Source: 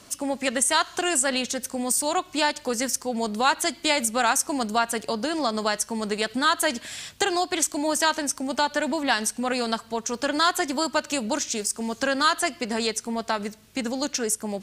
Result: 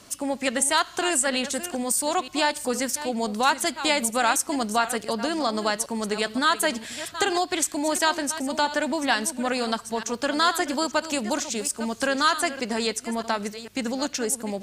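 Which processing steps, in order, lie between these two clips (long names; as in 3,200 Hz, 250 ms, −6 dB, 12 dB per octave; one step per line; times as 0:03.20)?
delay that plays each chunk backwards 456 ms, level −12.5 dB
dynamic equaliser 5,800 Hz, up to −4 dB, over −40 dBFS, Q 3.2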